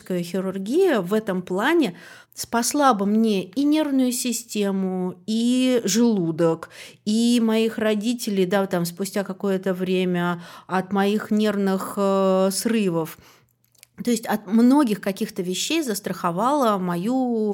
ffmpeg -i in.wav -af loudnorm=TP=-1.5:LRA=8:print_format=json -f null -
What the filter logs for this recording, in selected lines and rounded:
"input_i" : "-21.9",
"input_tp" : "-4.6",
"input_lra" : "1.4",
"input_thresh" : "-32.2",